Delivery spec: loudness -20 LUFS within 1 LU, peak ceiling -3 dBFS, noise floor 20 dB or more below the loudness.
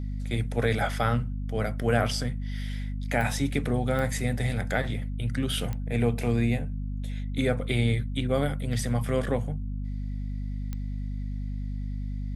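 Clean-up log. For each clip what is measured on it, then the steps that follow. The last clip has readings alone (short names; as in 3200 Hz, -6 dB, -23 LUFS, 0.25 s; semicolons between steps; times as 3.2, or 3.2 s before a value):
clicks 4; hum 50 Hz; harmonics up to 250 Hz; hum level -29 dBFS; loudness -29.0 LUFS; peak -10.0 dBFS; loudness target -20.0 LUFS
-> de-click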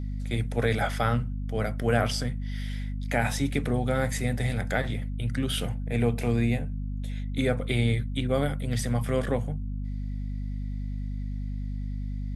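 clicks 0; hum 50 Hz; harmonics up to 250 Hz; hum level -29 dBFS
-> de-hum 50 Hz, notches 5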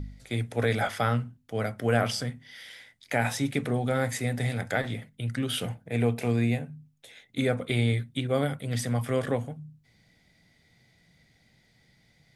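hum none; loudness -29.0 LUFS; peak -10.0 dBFS; loudness target -20.0 LUFS
-> gain +9 dB; limiter -3 dBFS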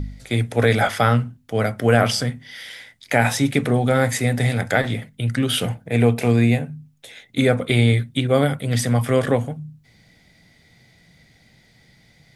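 loudness -20.0 LUFS; peak -3.0 dBFS; noise floor -56 dBFS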